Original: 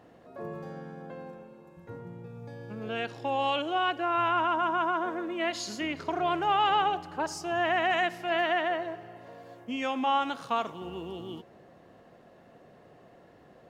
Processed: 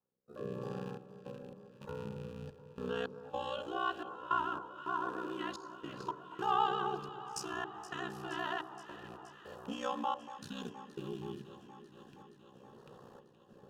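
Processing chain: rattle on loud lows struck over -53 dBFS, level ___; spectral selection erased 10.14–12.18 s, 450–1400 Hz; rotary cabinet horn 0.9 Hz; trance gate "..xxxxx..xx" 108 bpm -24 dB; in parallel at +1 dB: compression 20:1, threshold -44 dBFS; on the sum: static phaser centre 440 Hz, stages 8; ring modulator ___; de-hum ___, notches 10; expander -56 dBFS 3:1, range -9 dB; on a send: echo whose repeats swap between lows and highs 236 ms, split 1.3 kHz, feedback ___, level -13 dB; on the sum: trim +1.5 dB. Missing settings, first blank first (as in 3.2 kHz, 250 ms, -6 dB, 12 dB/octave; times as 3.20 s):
-38 dBFS, 31 Hz, 64.2 Hz, 84%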